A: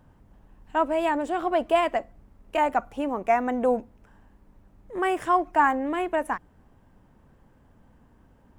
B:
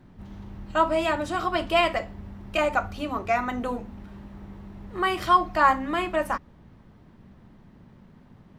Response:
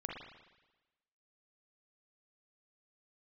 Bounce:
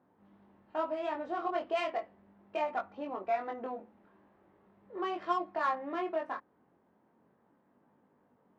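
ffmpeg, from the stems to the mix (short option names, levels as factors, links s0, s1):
-filter_complex "[0:a]lowpass=1600,acompressor=threshold=0.0562:ratio=6,volume=0.631[s0];[1:a]volume=0.299[s1];[s0][s1]amix=inputs=2:normalize=0,adynamicsmooth=sensitivity=3:basefreq=2400,flanger=delay=20:depth=3.3:speed=0.37,highpass=310,lowpass=7000"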